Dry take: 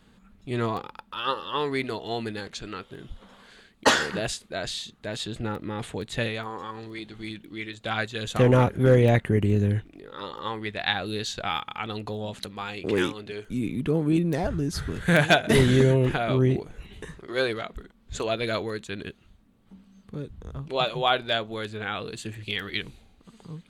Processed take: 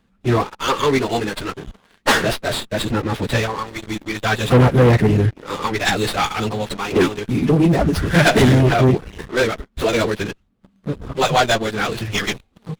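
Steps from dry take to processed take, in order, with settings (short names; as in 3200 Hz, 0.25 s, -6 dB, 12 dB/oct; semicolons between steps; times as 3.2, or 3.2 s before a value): plain phase-vocoder stretch 0.54×; sample leveller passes 3; running maximum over 5 samples; gain +3.5 dB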